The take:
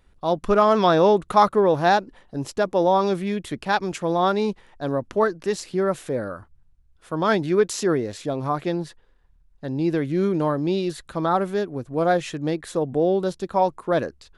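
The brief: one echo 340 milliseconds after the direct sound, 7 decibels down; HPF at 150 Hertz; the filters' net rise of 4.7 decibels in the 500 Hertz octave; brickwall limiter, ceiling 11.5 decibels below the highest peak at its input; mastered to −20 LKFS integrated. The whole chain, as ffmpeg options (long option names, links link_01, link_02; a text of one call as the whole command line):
ffmpeg -i in.wav -af "highpass=150,equalizer=frequency=500:width_type=o:gain=6,alimiter=limit=-13.5dB:level=0:latency=1,aecho=1:1:340:0.447,volume=3.5dB" out.wav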